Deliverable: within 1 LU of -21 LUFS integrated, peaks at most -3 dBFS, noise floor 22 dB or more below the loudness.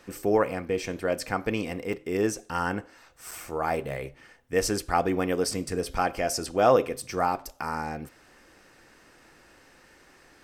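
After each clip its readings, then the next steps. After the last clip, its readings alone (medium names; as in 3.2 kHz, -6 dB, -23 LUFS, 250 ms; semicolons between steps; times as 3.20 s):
dropouts 2; longest dropout 5.3 ms; loudness -28.0 LUFS; peak level -7.5 dBFS; loudness target -21.0 LUFS
-> interpolate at 1.93/3.31 s, 5.3 ms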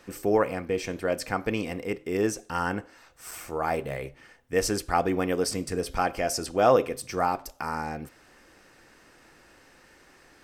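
dropouts 0; loudness -28.0 LUFS; peak level -7.5 dBFS; loudness target -21.0 LUFS
-> trim +7 dB; peak limiter -3 dBFS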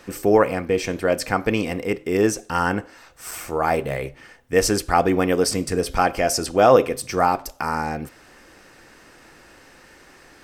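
loudness -21.0 LUFS; peak level -3.0 dBFS; noise floor -50 dBFS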